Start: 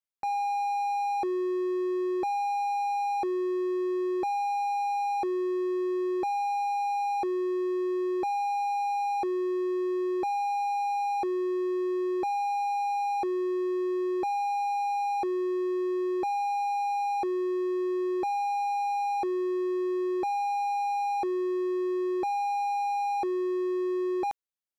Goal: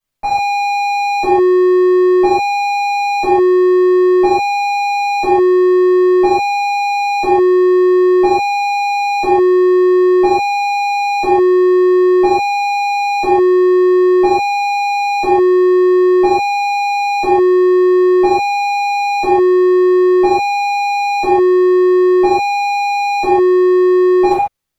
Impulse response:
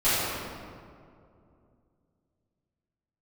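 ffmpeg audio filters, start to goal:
-filter_complex "[0:a]lowshelf=f=230:g=8.5[s0];[1:a]atrim=start_sample=2205,afade=t=out:st=0.21:d=0.01,atrim=end_sample=9702[s1];[s0][s1]afir=irnorm=-1:irlink=0,volume=1.5"

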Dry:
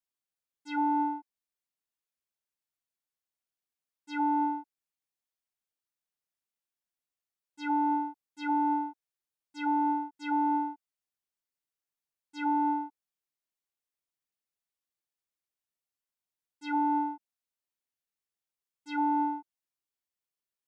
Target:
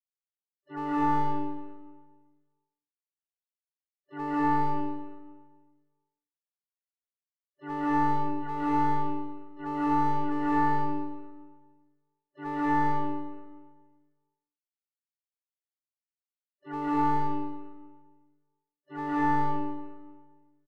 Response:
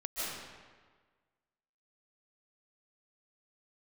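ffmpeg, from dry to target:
-filter_complex "[0:a]agate=range=0.0562:threshold=0.00891:ratio=16:detection=peak,lowpass=f=1400:w=0.5412,lowpass=f=1400:w=1.3066,asplit=4[s0][s1][s2][s3];[s1]asetrate=22050,aresample=44100,atempo=2,volume=0.282[s4];[s2]asetrate=58866,aresample=44100,atempo=0.749154,volume=0.355[s5];[s3]asetrate=88200,aresample=44100,atempo=0.5,volume=0.141[s6];[s0][s4][s5][s6]amix=inputs=4:normalize=0,acrossover=split=450|1100[s7][s8][s9];[s8]aeval=exprs='clip(val(0),-1,0.0133)':c=same[s10];[s7][s10][s9]amix=inputs=3:normalize=0[s11];[1:a]atrim=start_sample=2205[s12];[s11][s12]afir=irnorm=-1:irlink=0,volume=0.794"

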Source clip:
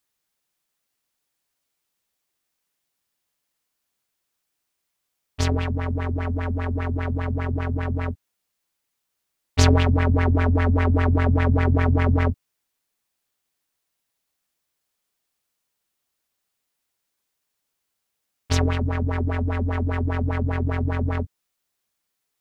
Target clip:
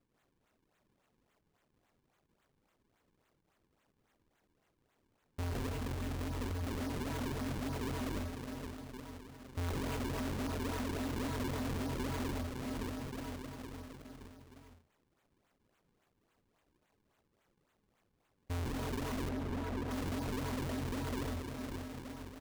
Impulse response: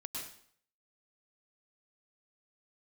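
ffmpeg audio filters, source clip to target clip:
-filter_complex "[0:a]asettb=1/sr,asplit=3[s0][s1][s2];[s0]atrim=end=5.584[s3];[s1]atrim=start=5.58:end=6.51,asetpts=PTS-STARTPTS,afade=t=in:d=0.004:c=qsin,afade=t=out:st=0.926:d=0.004:c=qsin,acrossover=split=170|3000[s4][s5][s6];[s5]acompressor=threshold=0.0178:ratio=4[s7];[s4][s7][s6]amix=inputs=3:normalize=0[s8];[s2]atrim=start=6.506[s9];[s3][s8]acrossfade=d=0.004:c1=hsin:c2=qsin[s10];[s10][s9]acrossfade=d=0.004:c1=qsin:c2=hsin,aecho=1:1:463|926|1389|1852|2315:0.15|0.0838|0.0469|0.0263|0.0147[s11];[1:a]atrim=start_sample=2205,afade=t=out:st=0.29:d=0.01,atrim=end_sample=13230[s12];[s11][s12]afir=irnorm=-1:irlink=0,acrusher=samples=39:mix=1:aa=0.000001:lfo=1:lforange=62.4:lforate=3.6,aeval=exprs='(mod(3.98*val(0)+1,2)-1)/3.98':c=same,acompressor=threshold=0.02:ratio=4,asoftclip=type=tanh:threshold=0.015,asettb=1/sr,asplit=3[s13][s14][s15];[s13]atrim=end=19.294[s16];[s14]atrim=start=19.29:end=19.91,asetpts=PTS-STARTPTS,afade=t=in:d=0.004:c=qsin,afade=t=out:st=0.616:d=0.004:c=qsin,highshelf=f=3300:g=-11[s17];[s15]atrim=start=19.906[s18];[s16][s17]acrossfade=d=0.004:c1=hsin:c2=qsin[s19];[s19][s18]acrossfade=d=0.004:c1=qsin:c2=hsin,volume=1.33"

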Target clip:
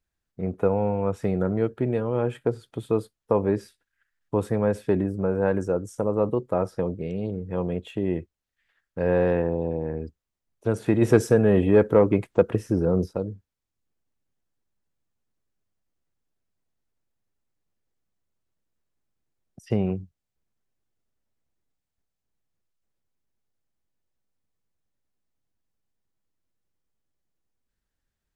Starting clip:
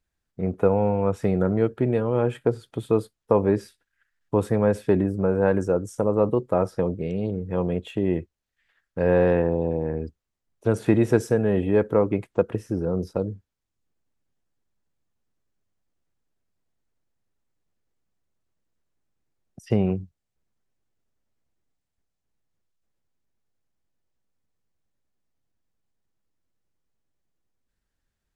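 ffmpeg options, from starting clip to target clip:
-filter_complex "[0:a]asplit=3[s0][s1][s2];[s0]afade=t=out:st=11.01:d=0.02[s3];[s1]acontrast=52,afade=t=in:st=11.01:d=0.02,afade=t=out:st=13.05:d=0.02[s4];[s2]afade=t=in:st=13.05:d=0.02[s5];[s3][s4][s5]amix=inputs=3:normalize=0,volume=0.75"

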